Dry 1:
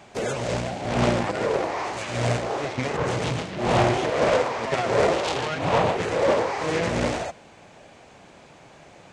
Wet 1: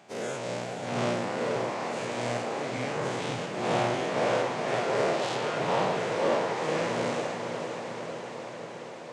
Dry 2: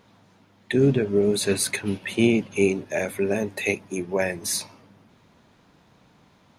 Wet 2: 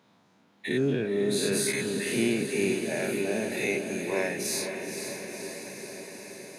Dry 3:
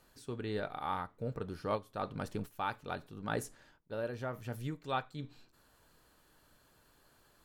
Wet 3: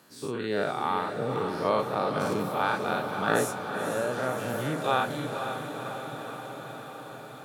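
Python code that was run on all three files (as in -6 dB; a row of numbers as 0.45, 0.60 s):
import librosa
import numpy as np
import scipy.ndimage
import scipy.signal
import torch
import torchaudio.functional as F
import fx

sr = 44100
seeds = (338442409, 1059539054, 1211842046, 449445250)

p1 = fx.spec_dilate(x, sr, span_ms=120)
p2 = scipy.signal.sosfilt(scipy.signal.butter(4, 130.0, 'highpass', fs=sr, output='sos'), p1)
p3 = p2 + fx.echo_diffused(p2, sr, ms=507, feedback_pct=72, wet_db=-7, dry=0)
y = p3 * 10.0 ** (-30 / 20.0) / np.sqrt(np.mean(np.square(p3)))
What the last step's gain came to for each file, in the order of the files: -11.0, -10.5, +4.0 dB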